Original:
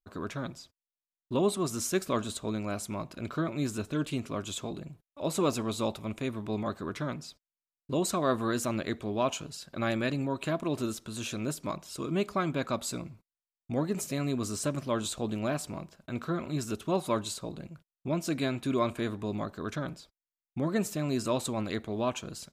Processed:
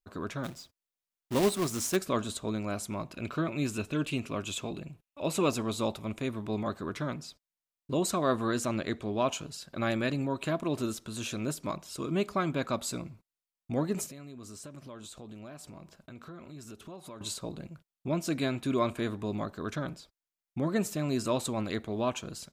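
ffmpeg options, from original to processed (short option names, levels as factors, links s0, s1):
-filter_complex "[0:a]asplit=3[s0][s1][s2];[s0]afade=t=out:st=0.43:d=0.02[s3];[s1]acrusher=bits=2:mode=log:mix=0:aa=0.000001,afade=t=in:st=0.43:d=0.02,afade=t=out:st=1.95:d=0.02[s4];[s2]afade=t=in:st=1.95:d=0.02[s5];[s3][s4][s5]amix=inputs=3:normalize=0,asettb=1/sr,asplit=3[s6][s7][s8];[s6]atrim=end=3.124[s9];[s7]atrim=start=3.12:end=5.51,asetpts=PTS-STARTPTS,afade=t=in:d=0.004:c=qsin,afade=t=out:st=2.386:d=0.004:c=qsin,equalizer=f=2600:w=5:g=9[s10];[s8]atrim=start=5.506[s11];[s9][s10]acrossfade=d=0.004:c1=hsin:c2=qsin[s12];[s12][s11]acrossfade=d=0.004:c1=qsin:c2=hsin,asettb=1/sr,asplit=3[s13][s14][s15];[s13]atrim=end=8.354[s16];[s14]atrim=start=8.35:end=9.27,asetpts=PTS-STARTPTS,afade=t=in:d=0.004:c=qsin,afade=t=out:st=0.916:d=0.004:c=qsin,lowpass=11000[s17];[s15]atrim=start=9.266[s18];[s16][s17]acrossfade=d=0.004:c1=hsin:c2=qsin[s19];[s19][s18]acrossfade=d=0.004:c1=qsin:c2=hsin,asettb=1/sr,asplit=3[s20][s21][s22];[s20]atrim=end=14.064[s23];[s21]atrim=start=14.06:end=17.21,asetpts=PTS-STARTPTS,afade=t=in:d=0.004:c=qsin,afade=t=out:st=3.146:d=0.004:c=qsin,acompressor=threshold=0.00562:ratio=4:attack=3.2:release=140:knee=1:detection=peak[s24];[s22]atrim=start=17.206[s25];[s23][s24]acrossfade=d=0.004:c1=hsin:c2=qsin[s26];[s26][s25]acrossfade=d=0.004:c1=qsin:c2=hsin"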